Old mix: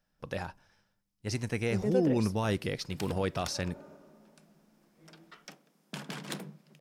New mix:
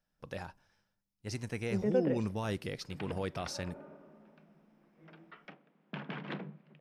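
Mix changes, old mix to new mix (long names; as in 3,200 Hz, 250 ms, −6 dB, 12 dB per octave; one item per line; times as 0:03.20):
speech −5.5 dB
background: add low-pass filter 2,800 Hz 24 dB per octave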